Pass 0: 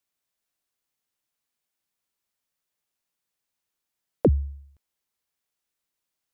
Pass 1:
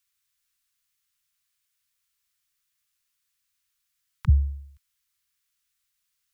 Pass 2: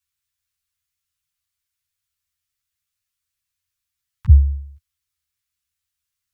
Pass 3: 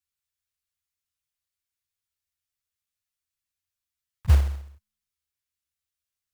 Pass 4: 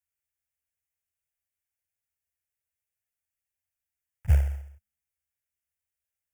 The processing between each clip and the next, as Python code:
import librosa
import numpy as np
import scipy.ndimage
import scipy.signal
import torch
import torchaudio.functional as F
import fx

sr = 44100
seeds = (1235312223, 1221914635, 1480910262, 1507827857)

y1 = scipy.signal.sosfilt(scipy.signal.cheby2(4, 40, [240.0, 680.0], 'bandstop', fs=sr, output='sos'), x)
y1 = fx.peak_eq(y1, sr, hz=360.0, db=-14.5, octaves=2.3)
y1 = y1 * librosa.db_to_amplitude(7.0)
y2 = fx.peak_eq(y1, sr, hz=85.0, db=12.0, octaves=1.7)
y2 = fx.ensemble(y2, sr)
y2 = y2 * librosa.db_to_amplitude(-1.0)
y3 = fx.comb_fb(y2, sr, f0_hz=210.0, decay_s=1.0, harmonics='all', damping=0.0, mix_pct=50)
y3 = fx.quant_float(y3, sr, bits=2)
y3 = y3 * librosa.db_to_amplitude(-1.5)
y4 = fx.diode_clip(y3, sr, knee_db=-15.5)
y4 = fx.fixed_phaser(y4, sr, hz=1100.0, stages=6)